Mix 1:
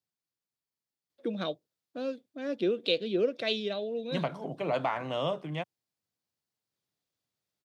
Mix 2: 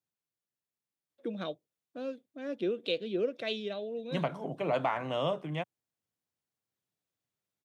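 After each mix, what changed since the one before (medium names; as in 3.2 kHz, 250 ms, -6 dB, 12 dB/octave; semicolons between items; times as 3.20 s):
first voice -3.5 dB; master: add peaking EQ 4.6 kHz -6 dB 0.54 oct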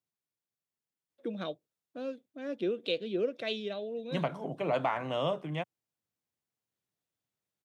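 no change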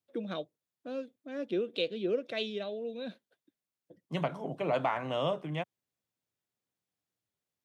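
first voice: entry -1.10 s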